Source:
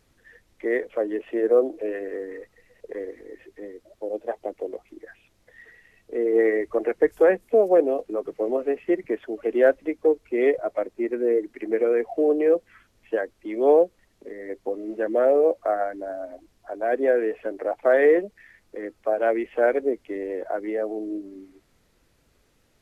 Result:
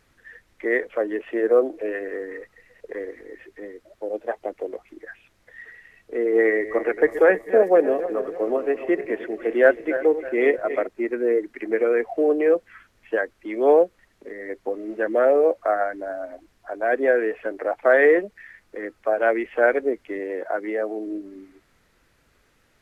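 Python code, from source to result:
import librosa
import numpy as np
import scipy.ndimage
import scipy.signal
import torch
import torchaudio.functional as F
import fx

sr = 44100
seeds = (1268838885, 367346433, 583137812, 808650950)

y = fx.reverse_delay_fb(x, sr, ms=159, feedback_pct=62, wet_db=-12.0, at=(6.47, 10.87))
y = fx.highpass(y, sr, hz=140.0, slope=12, at=(20.19, 21.07))
y = fx.peak_eq(y, sr, hz=1600.0, db=7.5, octaves=1.5)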